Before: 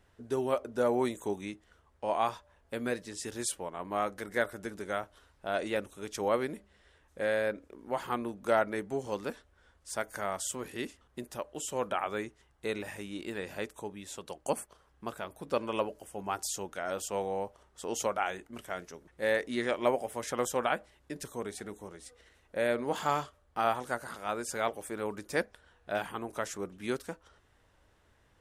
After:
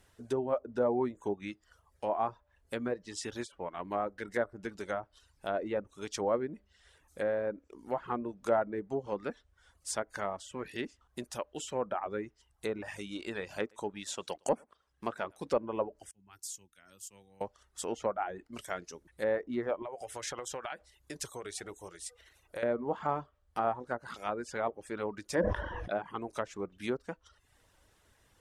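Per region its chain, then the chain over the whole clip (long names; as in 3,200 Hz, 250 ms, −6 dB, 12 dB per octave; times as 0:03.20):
0:13.60–0:15.57: low-shelf EQ 89 Hz −11 dB + leveller curve on the samples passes 1 + single-tap delay 110 ms −20.5 dB
0:16.11–0:17.41: guitar amp tone stack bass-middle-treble 6-0-2 + multiband upward and downward expander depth 40%
0:19.82–0:22.63: downward compressor 10 to 1, threshold −34 dBFS + parametric band 220 Hz −11 dB 0.51 octaves
0:25.35–0:25.90: EQ curve with evenly spaced ripples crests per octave 1.2, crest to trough 10 dB + level that may fall only so fast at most 31 dB per second
whole clip: reverb reduction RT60 0.58 s; treble cut that deepens with the level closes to 990 Hz, closed at −30 dBFS; high-shelf EQ 4,400 Hz +11.5 dB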